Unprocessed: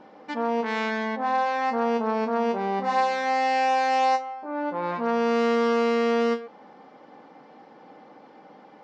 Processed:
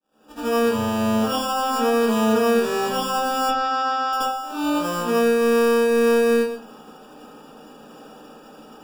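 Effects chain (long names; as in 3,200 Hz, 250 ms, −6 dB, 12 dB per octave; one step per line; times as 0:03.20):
fade in at the beginning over 0.56 s
high-shelf EQ 3,600 Hz −11.5 dB
brickwall limiter −18 dBFS, peak gain reduction 5 dB
decimation without filtering 21×
0:03.41–0:04.13: loudspeaker in its box 440–4,900 Hz, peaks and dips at 480 Hz −5 dB, 870 Hz −7 dB, 2,000 Hz +5 dB, 2,800 Hz −6 dB
convolution reverb RT60 0.45 s, pre-delay 73 ms, DRR −12 dB
level −7.5 dB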